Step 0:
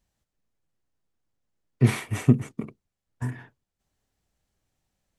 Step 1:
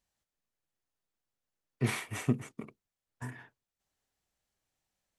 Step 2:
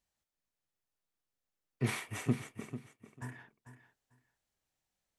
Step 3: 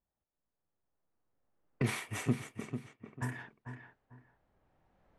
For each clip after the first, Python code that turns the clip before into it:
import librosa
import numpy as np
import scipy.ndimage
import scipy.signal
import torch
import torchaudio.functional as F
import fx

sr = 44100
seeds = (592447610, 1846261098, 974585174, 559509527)

y1 = fx.low_shelf(x, sr, hz=360.0, db=-10.0)
y1 = y1 * librosa.db_to_amplitude(-3.5)
y2 = fx.echo_feedback(y1, sr, ms=445, feedback_pct=18, wet_db=-12.0)
y2 = y2 * librosa.db_to_amplitude(-2.5)
y3 = fx.recorder_agc(y2, sr, target_db=-25.5, rise_db_per_s=8.9, max_gain_db=30)
y3 = fx.env_lowpass(y3, sr, base_hz=1000.0, full_db=-35.0)